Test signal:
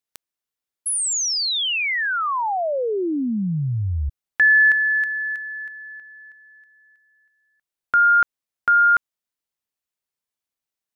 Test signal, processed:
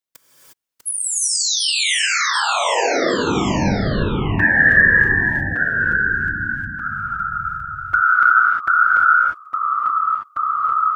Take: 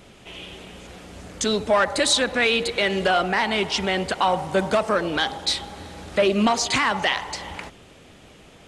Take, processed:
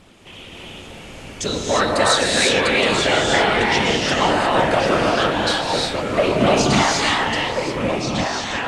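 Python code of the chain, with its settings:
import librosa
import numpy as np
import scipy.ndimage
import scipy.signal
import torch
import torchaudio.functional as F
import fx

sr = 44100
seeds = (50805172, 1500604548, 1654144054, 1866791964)

y = fx.whisperise(x, sr, seeds[0])
y = fx.echo_pitch(y, sr, ms=627, semitones=-2, count=3, db_per_echo=-6.0)
y = fx.rev_gated(y, sr, seeds[1], gate_ms=380, shape='rising', drr_db=-2.5)
y = y * librosa.db_to_amplitude(-1.0)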